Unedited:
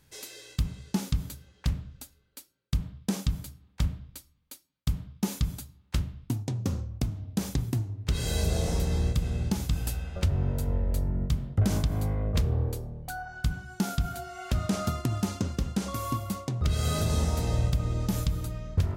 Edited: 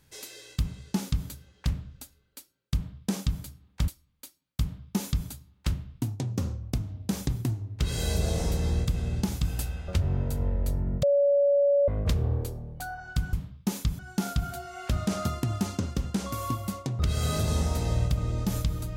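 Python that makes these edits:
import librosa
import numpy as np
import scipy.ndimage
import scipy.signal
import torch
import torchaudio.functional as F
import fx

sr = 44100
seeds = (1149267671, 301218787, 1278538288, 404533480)

y = fx.edit(x, sr, fx.cut(start_s=3.88, length_s=0.28),
    fx.duplicate(start_s=4.89, length_s=0.66, to_s=13.61),
    fx.bleep(start_s=11.31, length_s=0.85, hz=567.0, db=-18.5), tone=tone)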